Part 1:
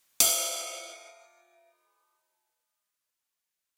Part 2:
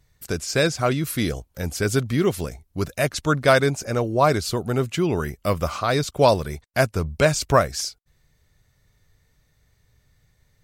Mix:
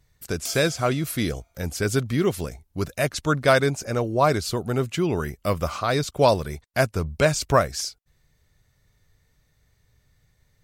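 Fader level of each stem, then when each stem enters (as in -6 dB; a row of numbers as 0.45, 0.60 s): -12.0, -1.5 dB; 0.25, 0.00 s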